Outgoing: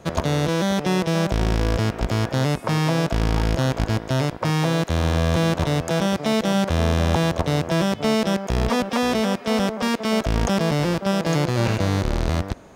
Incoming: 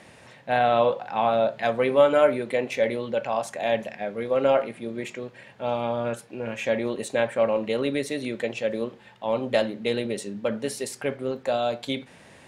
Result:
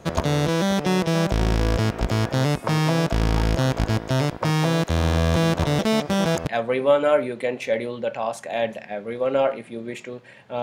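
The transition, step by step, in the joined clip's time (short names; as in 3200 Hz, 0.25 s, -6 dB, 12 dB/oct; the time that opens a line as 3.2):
outgoing
5.79–6.47 reverse
6.47 switch to incoming from 1.57 s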